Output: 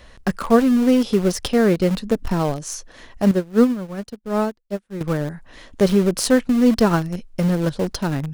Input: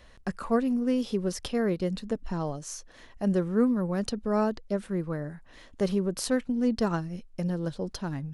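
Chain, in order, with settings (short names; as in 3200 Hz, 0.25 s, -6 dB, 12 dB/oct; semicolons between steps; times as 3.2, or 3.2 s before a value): in parallel at -11 dB: bit-crush 5-bit; 3.31–5.01 on the sum: upward expander 2.5:1, over -40 dBFS; gain +8.5 dB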